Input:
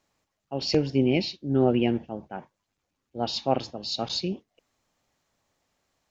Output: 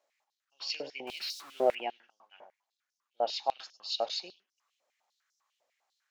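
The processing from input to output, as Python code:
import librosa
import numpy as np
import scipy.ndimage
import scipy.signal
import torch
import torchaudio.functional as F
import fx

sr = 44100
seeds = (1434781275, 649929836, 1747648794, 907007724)

y = fx.zero_step(x, sr, step_db=-34.5, at=(1.07, 1.75))
y = y + 10.0 ** (-20.0 / 20.0) * np.pad(y, (int(102 * sr / 1000.0), 0))[:len(y)]
y = fx.filter_held_highpass(y, sr, hz=10.0, low_hz=580.0, high_hz=5500.0)
y = y * 10.0 ** (-8.0 / 20.0)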